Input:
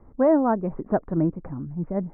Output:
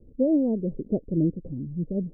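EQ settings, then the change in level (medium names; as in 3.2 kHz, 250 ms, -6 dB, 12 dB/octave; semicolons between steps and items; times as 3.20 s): elliptic low-pass 510 Hz, stop band 70 dB; 0.0 dB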